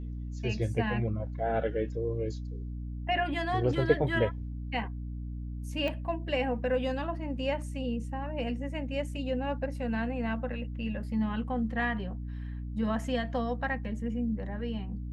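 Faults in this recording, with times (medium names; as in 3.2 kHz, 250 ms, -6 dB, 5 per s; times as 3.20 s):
hum 60 Hz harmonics 5 -37 dBFS
5.88 s: pop -22 dBFS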